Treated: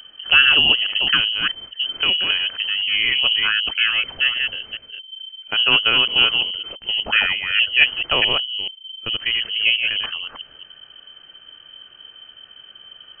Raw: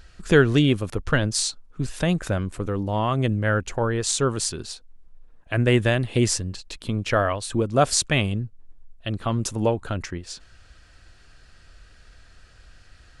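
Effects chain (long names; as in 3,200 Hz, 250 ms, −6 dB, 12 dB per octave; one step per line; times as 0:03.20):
delay that plays each chunk backwards 217 ms, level −3.5 dB
voice inversion scrambler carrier 3,100 Hz
level +2 dB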